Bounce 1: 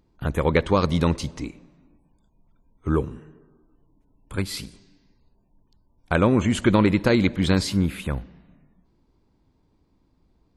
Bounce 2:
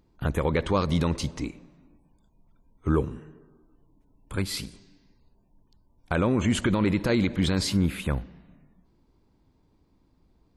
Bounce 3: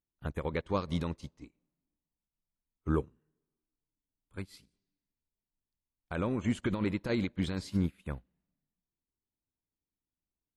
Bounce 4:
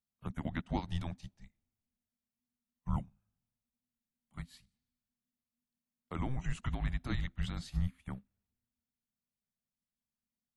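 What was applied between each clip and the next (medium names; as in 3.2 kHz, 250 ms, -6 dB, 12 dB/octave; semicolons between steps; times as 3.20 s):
peak limiter -13.5 dBFS, peak gain reduction 9.5 dB
upward expansion 2.5:1, over -38 dBFS; trim -4.5 dB
frequency shift -260 Hz; trim -3.5 dB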